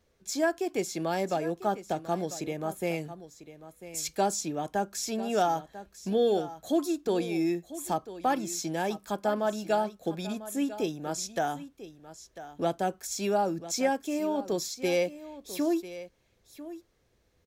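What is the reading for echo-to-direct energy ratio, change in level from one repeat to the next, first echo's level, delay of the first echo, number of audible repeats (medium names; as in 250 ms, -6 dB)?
-14.5 dB, no regular repeats, -14.5 dB, 996 ms, 1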